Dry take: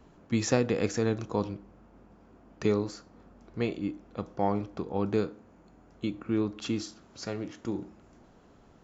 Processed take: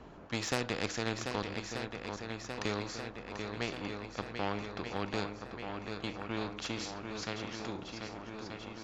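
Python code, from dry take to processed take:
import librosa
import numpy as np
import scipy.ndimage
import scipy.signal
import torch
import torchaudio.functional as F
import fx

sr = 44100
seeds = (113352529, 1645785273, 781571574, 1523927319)

y = scipy.signal.sosfilt(scipy.signal.butter(2, 4700.0, 'lowpass', fs=sr, output='sos'), x)
y = fx.cheby_harmonics(y, sr, harmonics=(7,), levels_db=(-25,), full_scale_db=-11.5)
y = fx.echo_swing(y, sr, ms=1232, ratio=1.5, feedback_pct=49, wet_db=-11.0)
y = fx.spectral_comp(y, sr, ratio=2.0)
y = F.gain(torch.from_numpy(y), -3.5).numpy()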